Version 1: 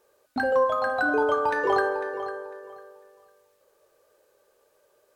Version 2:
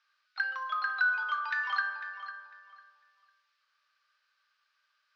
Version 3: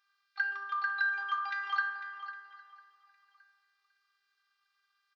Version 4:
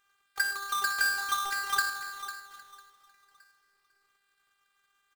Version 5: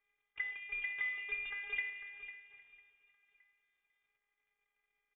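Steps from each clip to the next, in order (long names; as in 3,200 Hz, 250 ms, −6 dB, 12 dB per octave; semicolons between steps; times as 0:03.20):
elliptic band-pass filter 1,300–5,000 Hz, stop band 60 dB
phases set to zero 399 Hz; repeating echo 809 ms, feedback 36%, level −23.5 dB
each half-wave held at its own peak
gap after every zero crossing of 0.12 ms; voice inversion scrambler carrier 3,600 Hz; level −8 dB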